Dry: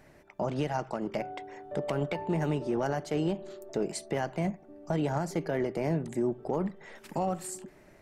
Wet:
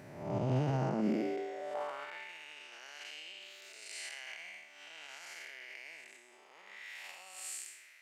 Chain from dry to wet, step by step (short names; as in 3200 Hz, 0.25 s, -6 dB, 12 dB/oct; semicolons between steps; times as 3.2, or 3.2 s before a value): time blur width 0.296 s; 1.01–1.75 bell 820 Hz -12.5 dB 1.4 oct; limiter -33 dBFS, peak gain reduction 10 dB; high-pass sweep 110 Hz -> 2400 Hz, 0.72–2.33; gain +6 dB